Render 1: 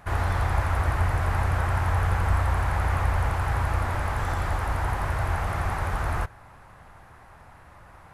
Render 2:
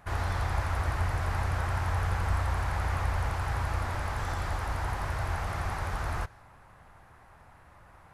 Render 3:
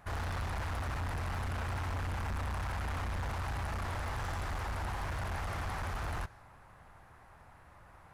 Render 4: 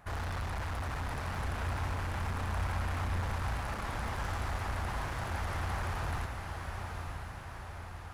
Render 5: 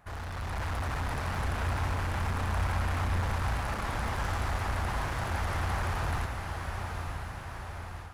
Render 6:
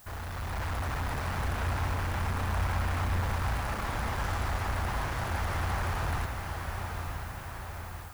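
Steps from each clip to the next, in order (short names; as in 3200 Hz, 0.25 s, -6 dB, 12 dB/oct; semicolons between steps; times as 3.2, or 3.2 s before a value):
dynamic EQ 5100 Hz, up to +6 dB, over -57 dBFS, Q 1; gain -5.5 dB
overloaded stage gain 31.5 dB; gain -2 dB
diffused feedback echo 0.911 s, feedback 59%, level -5 dB
AGC gain up to 6.5 dB; gain -2.5 dB
added noise blue -55 dBFS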